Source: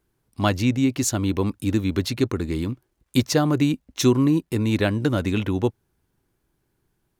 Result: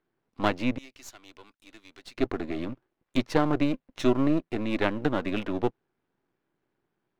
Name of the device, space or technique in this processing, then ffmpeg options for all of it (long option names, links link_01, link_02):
crystal radio: -filter_complex "[0:a]asettb=1/sr,asplit=3[link_01][link_02][link_03];[link_01]atrim=end=0.784[link_04];[link_02]atrim=start=0.78:end=2.18,asetpts=PTS-STARTPTS,afade=type=in:duration=0.004:curve=qsin,afade=type=out:start_time=1.396:duration=0.004:curve=qsin,aderivative[link_05];[link_03]atrim=start=2.176[link_06];[link_04][link_05]acrossfade=duration=0.004:curve1=hsin:curve2=qsin[link_07];[link_07][link_06]acrossfade=duration=0.004:curve1=qsin:curve2=hsin,highpass=210,lowpass=2700,aeval=exprs='if(lt(val(0),0),0.251*val(0),val(0))':channel_layout=same"